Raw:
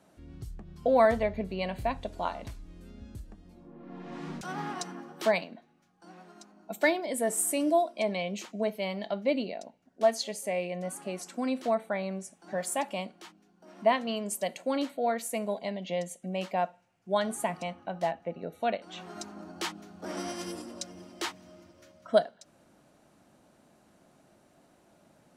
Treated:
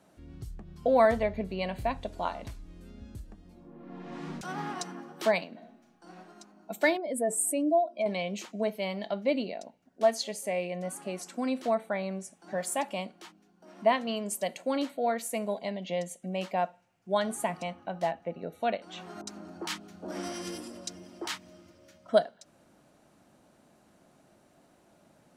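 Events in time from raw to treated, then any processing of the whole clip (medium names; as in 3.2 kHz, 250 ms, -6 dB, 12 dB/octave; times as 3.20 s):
5.49–6.16 s: reverb throw, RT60 0.82 s, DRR 1.5 dB
6.97–8.06 s: spectral contrast enhancement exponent 1.5
19.21–22.09 s: bands offset in time lows, highs 60 ms, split 1 kHz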